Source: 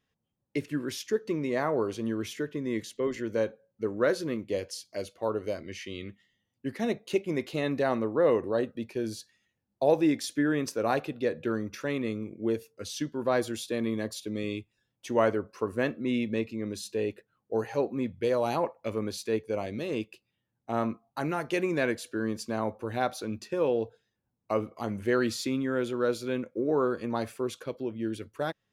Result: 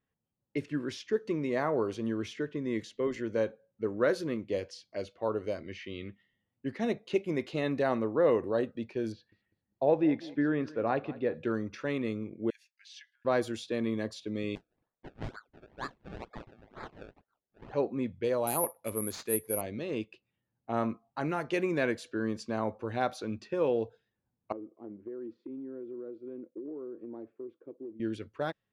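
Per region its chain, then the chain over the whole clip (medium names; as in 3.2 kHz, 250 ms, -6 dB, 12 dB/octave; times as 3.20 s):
9.12–11.34 s: distance through air 290 m + feedback delay 199 ms, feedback 33%, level -19 dB
12.50–13.25 s: compression 4:1, threshold -32 dBFS + rippled Chebyshev high-pass 1.6 kHz, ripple 3 dB
14.55–17.73 s: Chebyshev high-pass 1.4 kHz, order 5 + decimation with a swept rate 30× 2.1 Hz
18.47–19.61 s: high-pass 44 Hz + careless resampling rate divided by 4×, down none, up zero stuff
24.52–28.00 s: band-pass filter 330 Hz, Q 4.1 + compression 5:1, threshold -36 dBFS
whole clip: level rider gain up to 3.5 dB; treble shelf 6.3 kHz -7 dB; level-controlled noise filter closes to 2.3 kHz, open at -21.5 dBFS; trim -5 dB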